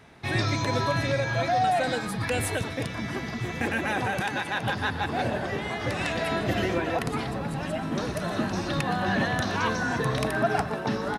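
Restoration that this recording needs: inverse comb 0.12 s -17 dB

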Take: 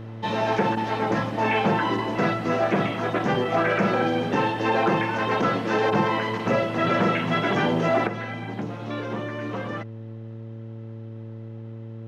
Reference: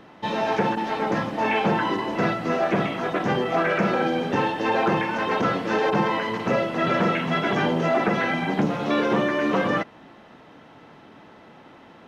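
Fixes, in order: de-hum 112.4 Hz, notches 5; gain correction +9.5 dB, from 8.07

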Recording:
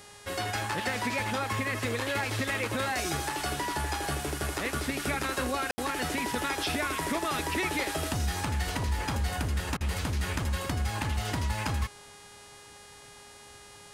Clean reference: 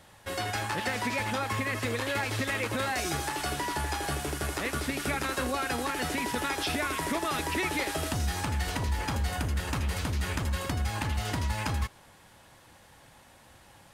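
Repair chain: de-hum 410.7 Hz, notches 27; room tone fill 5.71–5.78; interpolate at 9.77, 36 ms

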